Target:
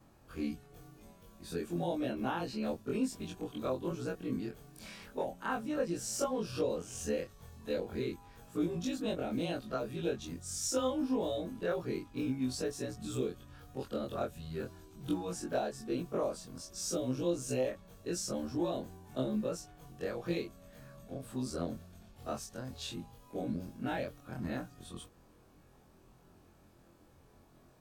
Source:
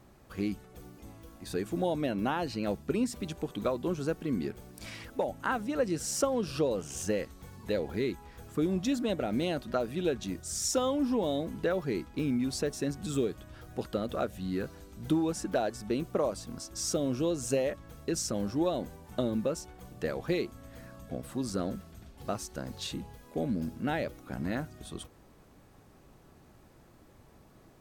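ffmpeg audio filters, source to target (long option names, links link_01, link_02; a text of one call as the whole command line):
ffmpeg -i in.wav -af "afftfilt=real='re':imag='-im':win_size=2048:overlap=0.75,bandreject=frequency=2000:width=13" out.wav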